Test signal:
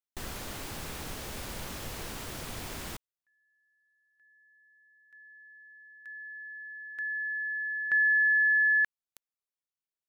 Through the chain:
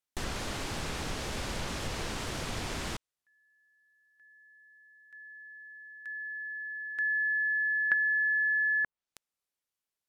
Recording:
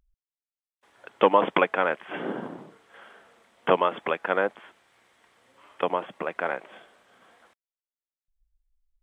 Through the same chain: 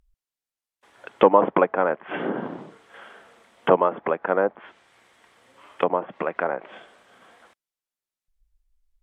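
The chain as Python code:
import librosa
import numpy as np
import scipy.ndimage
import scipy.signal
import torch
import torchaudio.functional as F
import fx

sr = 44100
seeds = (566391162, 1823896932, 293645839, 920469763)

y = fx.env_lowpass_down(x, sr, base_hz=1100.0, full_db=-24.5)
y = y * 10.0 ** (4.5 / 20.0)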